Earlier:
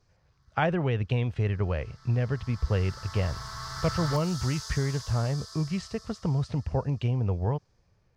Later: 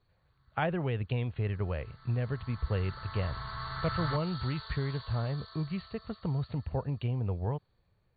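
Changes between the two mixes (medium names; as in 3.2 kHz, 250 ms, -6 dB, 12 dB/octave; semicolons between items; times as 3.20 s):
speech -5.0 dB; master: add brick-wall FIR low-pass 4.6 kHz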